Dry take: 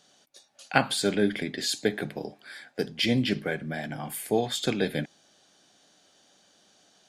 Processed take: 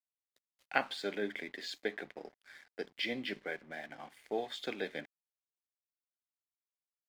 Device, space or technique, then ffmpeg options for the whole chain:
pocket radio on a weak battery: -af "highpass=350,lowpass=4000,aeval=exprs='sgn(val(0))*max(abs(val(0))-0.00316,0)':c=same,equalizer=f=2000:t=o:w=0.31:g=5.5,volume=0.376"

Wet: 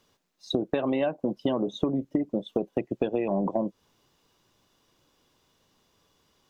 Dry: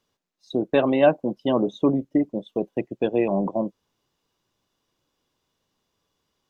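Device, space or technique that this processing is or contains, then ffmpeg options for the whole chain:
serial compression, leveller first: -af "acompressor=threshold=0.1:ratio=3,acompressor=threshold=0.0282:ratio=8,volume=2.51"

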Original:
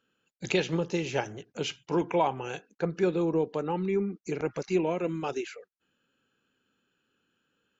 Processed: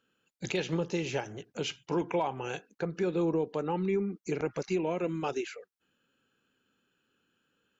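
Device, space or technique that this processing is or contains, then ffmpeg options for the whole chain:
clipper into limiter: -af "asoftclip=type=hard:threshold=0.178,alimiter=limit=0.0891:level=0:latency=1:release=187"

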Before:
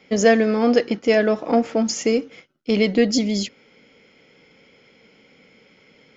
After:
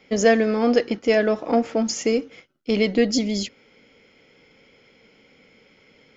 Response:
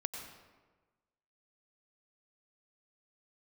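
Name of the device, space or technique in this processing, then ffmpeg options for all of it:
low shelf boost with a cut just above: -af "lowshelf=f=90:g=6.5,equalizer=f=170:t=o:w=0.75:g=-3.5,volume=0.841"

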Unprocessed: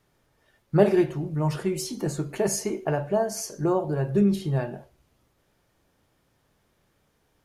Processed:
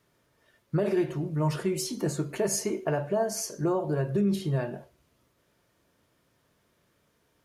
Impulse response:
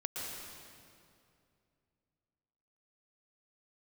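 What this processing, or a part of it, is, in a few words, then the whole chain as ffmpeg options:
PA system with an anti-feedback notch: -af "highpass=f=100:p=1,asuperstop=centerf=800:order=4:qfactor=7.7,alimiter=limit=0.126:level=0:latency=1:release=100"

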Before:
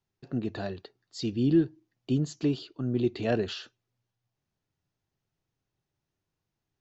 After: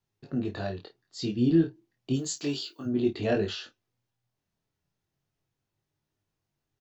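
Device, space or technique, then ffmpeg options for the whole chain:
double-tracked vocal: -filter_complex "[0:a]asplit=3[s0][s1][s2];[s0]afade=t=out:st=2.13:d=0.02[s3];[s1]aemphasis=mode=production:type=riaa,afade=t=in:st=2.13:d=0.02,afade=t=out:st=2.85:d=0.02[s4];[s2]afade=t=in:st=2.85:d=0.02[s5];[s3][s4][s5]amix=inputs=3:normalize=0,asplit=2[s6][s7];[s7]adelay=29,volume=0.282[s8];[s6][s8]amix=inputs=2:normalize=0,flanger=delay=19.5:depth=5.1:speed=0.33,volume=1.5"

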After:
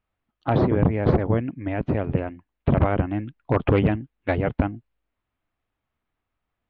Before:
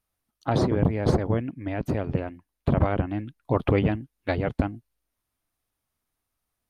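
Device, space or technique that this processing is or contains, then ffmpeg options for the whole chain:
synthesiser wavefolder: -af "aeval=exprs='0.251*(abs(mod(val(0)/0.251+3,4)-2)-1)':c=same,lowpass=f=3100:w=0.5412,lowpass=f=3100:w=1.3066,volume=1.41"

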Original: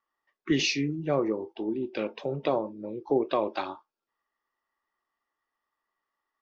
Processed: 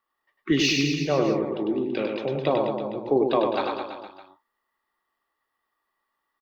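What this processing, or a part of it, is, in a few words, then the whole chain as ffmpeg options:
exciter from parts: -filter_complex "[0:a]asplit=2[s0][s1];[s1]highpass=f=4100:w=0.5412,highpass=f=4100:w=1.3066,asoftclip=type=tanh:threshold=0.0112,highpass=f=3000:w=0.5412,highpass=f=3000:w=1.3066,volume=0.447[s2];[s0][s2]amix=inputs=2:normalize=0,aecho=1:1:100|210|331|464.1|610.5:0.631|0.398|0.251|0.158|0.1,volume=1.41"

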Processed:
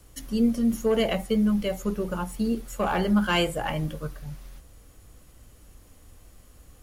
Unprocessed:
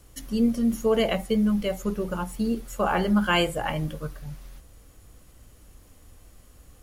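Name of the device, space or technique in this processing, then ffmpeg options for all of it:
one-band saturation: -filter_complex "[0:a]acrossover=split=390|2700[s0][s1][s2];[s1]asoftclip=type=tanh:threshold=0.0944[s3];[s0][s3][s2]amix=inputs=3:normalize=0"

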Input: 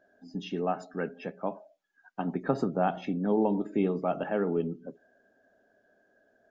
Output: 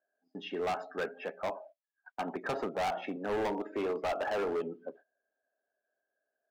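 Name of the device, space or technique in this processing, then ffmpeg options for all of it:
walkie-talkie: -filter_complex "[0:a]asettb=1/sr,asplit=3[s0][s1][s2];[s0]atrim=end=3.164[s3];[s1]atrim=start=3.16:end=4.38,asetpts=PTS-STARTPTS,afade=t=in:d=0.004:c=qsin,afade=t=out:st=1.216:d=0.004:c=qsin,highpass=210[s4];[s2]atrim=start=4.376[s5];[s3][s4]acrossfade=d=0.004:c1=hsin:c2=qsin[s6];[s6][s5]acrossfade=d=0.004:c1=qsin:c2=hsin,highpass=540,lowpass=2300,asoftclip=type=hard:threshold=0.0188,agate=range=0.0794:threshold=0.00141:ratio=16:detection=peak,volume=1.88"

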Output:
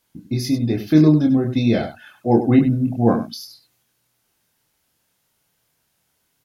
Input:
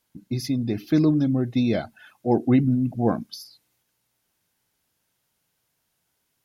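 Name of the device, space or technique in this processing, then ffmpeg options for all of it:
slapback doubling: -filter_complex "[0:a]asplit=3[s0][s1][s2];[s1]adelay=26,volume=0.631[s3];[s2]adelay=98,volume=0.316[s4];[s0][s3][s4]amix=inputs=3:normalize=0,volume=1.5"

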